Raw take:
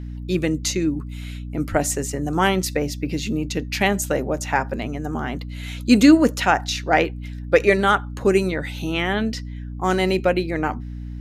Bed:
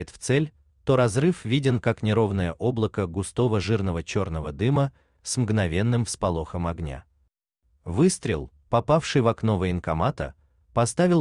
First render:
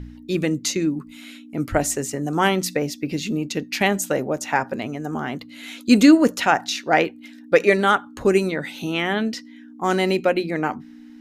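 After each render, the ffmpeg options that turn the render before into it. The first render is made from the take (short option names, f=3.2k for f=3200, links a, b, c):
-af "bandreject=f=60:t=h:w=4,bandreject=f=120:t=h:w=4,bandreject=f=180:t=h:w=4"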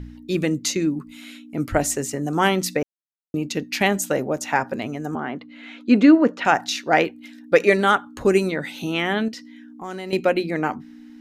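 -filter_complex "[0:a]asettb=1/sr,asplit=3[a][b][c];[a]atrim=end=5.154[d];[b]atrim=start=5.15:end=6.45,asetpts=PTS-STARTPTS,afade=t=in:d=0.004:c=qsin,afade=t=out:st=1.296:d=0.004:c=qsin,highpass=180,lowpass=2.3k[e];[c]atrim=start=6.446[f];[d][e]acrossfade=d=0.004:c1=hsin:c2=qsin[g];[g][f]acrossfade=d=0.004:c1=qsin:c2=hsin,asettb=1/sr,asplit=3[h][i][j];[h]atrim=end=9.284[k];[i]atrim=start=9.28:end=10.13,asetpts=PTS-STARTPTS,afade=t=in:d=0.004:c=qsin,afade=t=out:st=0.846:d=0.004:c=qsin,acompressor=threshold=-34dB:ratio=2.5:attack=3.2:release=140:knee=1:detection=peak[l];[j]atrim=start=10.126[m];[k][l]acrossfade=d=0.004:c1=hsin:c2=qsin[n];[n][m]acrossfade=d=0.004:c1=qsin:c2=hsin,asplit=3[o][p][q];[o]atrim=end=2.83,asetpts=PTS-STARTPTS,afade=t=out:st=2.826:d=0.004:c=hsin[r];[p]atrim=start=2.83:end=3.34,asetpts=PTS-STARTPTS,volume=0[s];[q]atrim=start=3.34,asetpts=PTS-STARTPTS,afade=t=in:d=0.004:c=hsin[t];[r][s][t]concat=n=3:v=0:a=1"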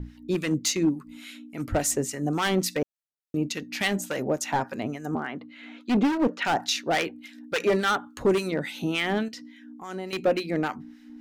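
-filter_complex "[0:a]volume=16dB,asoftclip=hard,volume=-16dB,acrossover=split=1100[a][b];[a]aeval=exprs='val(0)*(1-0.7/2+0.7/2*cos(2*PI*3.5*n/s))':c=same[c];[b]aeval=exprs='val(0)*(1-0.7/2-0.7/2*cos(2*PI*3.5*n/s))':c=same[d];[c][d]amix=inputs=2:normalize=0"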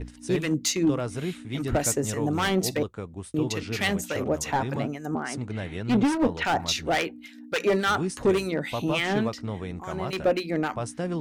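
-filter_complex "[1:a]volume=-10dB[a];[0:a][a]amix=inputs=2:normalize=0"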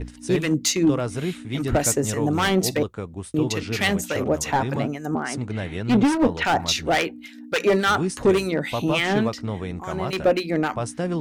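-af "volume=4dB"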